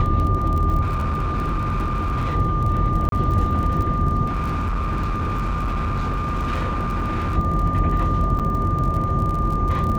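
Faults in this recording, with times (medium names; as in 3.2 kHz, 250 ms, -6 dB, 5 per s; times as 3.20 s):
crackle 31 per s -26 dBFS
whine 1.2 kHz -24 dBFS
0.81–2.35 s: clipped -19 dBFS
3.09–3.12 s: dropout 32 ms
4.26–7.37 s: clipped -20 dBFS
8.39–8.40 s: dropout 6.8 ms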